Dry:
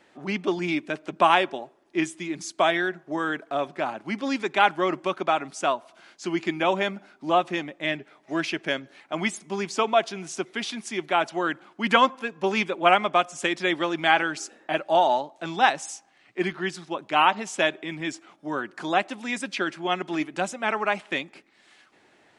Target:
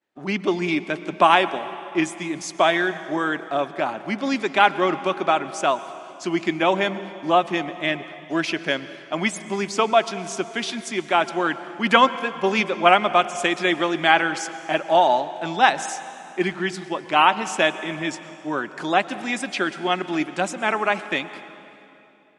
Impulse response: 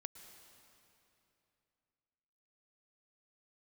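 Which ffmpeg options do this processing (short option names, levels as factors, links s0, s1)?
-filter_complex "[0:a]agate=range=0.0224:threshold=0.00631:ratio=3:detection=peak,asplit=2[s0][s1];[1:a]atrim=start_sample=2205[s2];[s1][s2]afir=irnorm=-1:irlink=0,volume=1.78[s3];[s0][s3]amix=inputs=2:normalize=0,volume=0.75"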